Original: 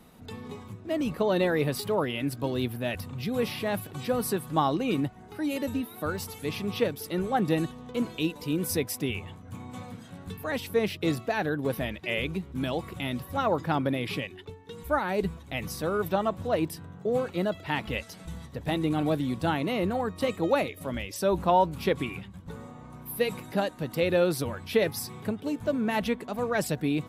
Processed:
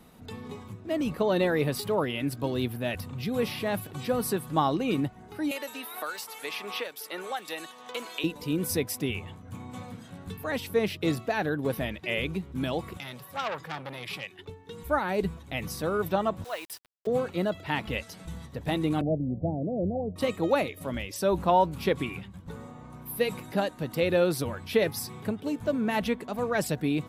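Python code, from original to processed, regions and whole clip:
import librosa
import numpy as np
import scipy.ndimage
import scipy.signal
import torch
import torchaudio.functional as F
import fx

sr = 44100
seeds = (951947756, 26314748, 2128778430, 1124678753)

y = fx.chain(x, sr, fx.highpass(hz=780.0, slope=12),
    fx.band_squash(depth_pct=100), at=(5.51, 8.24))
y = fx.chain(y, sr, fx.highpass(hz=130.0, slope=24),
    fx.peak_eq(hz=270.0, db=-12.0, octaves=1.5),
    fx.transformer_sat(knee_hz=3100.0), at=(12.97, 14.39))
y = fx.chain(y, sr, fx.highpass(hz=1000.0, slope=12),
    fx.quant_dither(seeds[0], bits=8, dither='none'), at=(16.44, 17.07))
y = fx.chain(y, sr, fx.steep_lowpass(hz=670.0, slope=48),
    fx.comb(ms=1.4, depth=0.33), at=(19.01, 20.16))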